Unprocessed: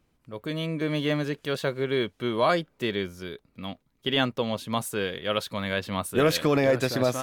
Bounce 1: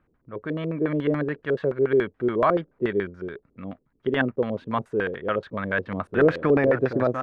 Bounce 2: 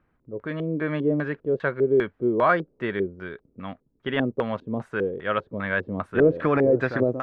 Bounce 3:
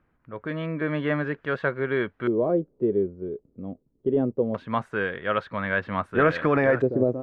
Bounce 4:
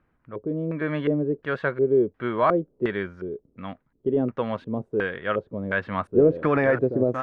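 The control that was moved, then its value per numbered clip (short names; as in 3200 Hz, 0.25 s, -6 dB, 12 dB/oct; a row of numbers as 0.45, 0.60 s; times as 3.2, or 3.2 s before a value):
LFO low-pass, rate: 7, 2.5, 0.22, 1.4 Hz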